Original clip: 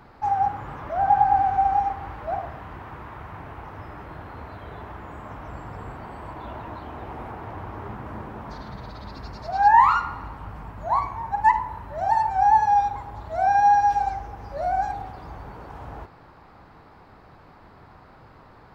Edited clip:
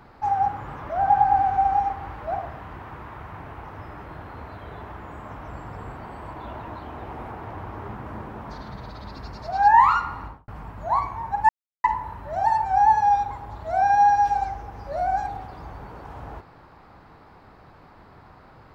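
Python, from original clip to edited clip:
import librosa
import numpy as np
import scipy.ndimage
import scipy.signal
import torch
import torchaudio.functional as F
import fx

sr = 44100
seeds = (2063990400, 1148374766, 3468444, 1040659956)

y = fx.studio_fade_out(x, sr, start_s=10.23, length_s=0.25)
y = fx.edit(y, sr, fx.insert_silence(at_s=11.49, length_s=0.35), tone=tone)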